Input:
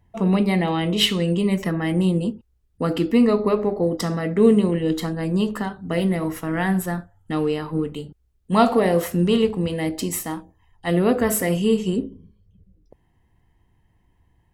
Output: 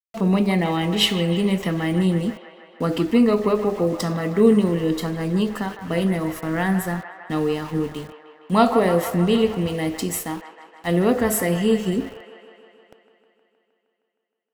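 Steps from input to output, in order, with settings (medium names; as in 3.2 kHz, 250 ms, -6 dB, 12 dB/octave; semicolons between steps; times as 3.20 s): small samples zeroed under -37.5 dBFS; feedback echo behind a band-pass 156 ms, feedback 71%, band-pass 1.3 kHz, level -9 dB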